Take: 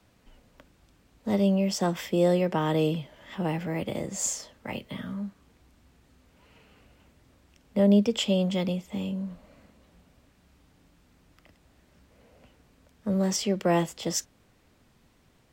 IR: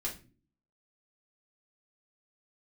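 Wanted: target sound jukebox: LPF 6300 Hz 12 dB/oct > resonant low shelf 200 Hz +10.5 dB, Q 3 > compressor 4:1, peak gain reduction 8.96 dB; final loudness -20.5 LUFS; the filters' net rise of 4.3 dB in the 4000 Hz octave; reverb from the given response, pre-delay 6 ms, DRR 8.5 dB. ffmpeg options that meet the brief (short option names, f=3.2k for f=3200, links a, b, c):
-filter_complex "[0:a]equalizer=f=4k:t=o:g=7,asplit=2[a][b];[1:a]atrim=start_sample=2205,adelay=6[c];[b][c]afir=irnorm=-1:irlink=0,volume=-10dB[d];[a][d]amix=inputs=2:normalize=0,lowpass=6.3k,lowshelf=f=200:t=q:w=3:g=10.5,acompressor=threshold=-19dB:ratio=4,volume=4dB"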